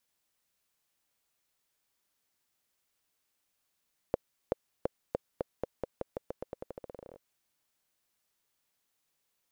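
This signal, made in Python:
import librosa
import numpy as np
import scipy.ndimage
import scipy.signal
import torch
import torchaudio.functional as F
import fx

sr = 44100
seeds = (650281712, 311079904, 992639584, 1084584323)

y = fx.bouncing_ball(sr, first_gap_s=0.38, ratio=0.88, hz=518.0, decay_ms=18.0, level_db=-13.5)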